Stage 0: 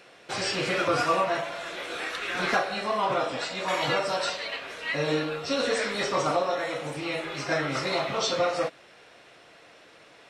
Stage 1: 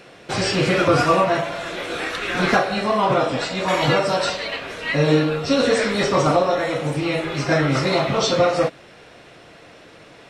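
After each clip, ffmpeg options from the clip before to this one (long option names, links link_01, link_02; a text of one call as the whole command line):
ffmpeg -i in.wav -af "lowshelf=frequency=310:gain=11.5,volume=5.5dB" out.wav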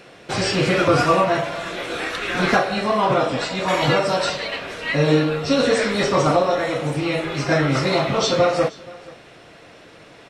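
ffmpeg -i in.wav -af "aecho=1:1:477:0.0794" out.wav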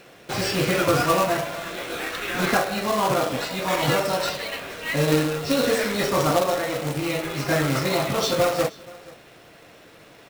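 ffmpeg -i in.wav -af "acrusher=bits=2:mode=log:mix=0:aa=0.000001,volume=-4dB" out.wav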